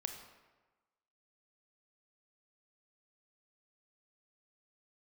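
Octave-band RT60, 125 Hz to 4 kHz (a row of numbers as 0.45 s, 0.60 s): 1.2 s, 1.2 s, 1.2 s, 1.3 s, 1.1 s, 0.80 s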